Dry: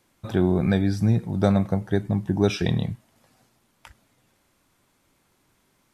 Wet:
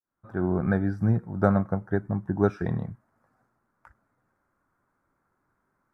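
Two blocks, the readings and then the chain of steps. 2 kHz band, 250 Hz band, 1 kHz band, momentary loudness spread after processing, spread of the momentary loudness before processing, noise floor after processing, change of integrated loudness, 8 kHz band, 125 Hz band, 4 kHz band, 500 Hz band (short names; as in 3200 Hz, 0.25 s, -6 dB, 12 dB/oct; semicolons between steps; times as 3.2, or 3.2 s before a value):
-1.5 dB, -3.5 dB, +0.5 dB, 7 LU, 6 LU, -76 dBFS, -3.5 dB, under -20 dB, -4.0 dB, under -20 dB, -2.5 dB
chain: opening faded in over 0.55 s; resonant high shelf 2100 Hz -13.5 dB, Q 3; upward expander 1.5:1, over -30 dBFS; gain -1.5 dB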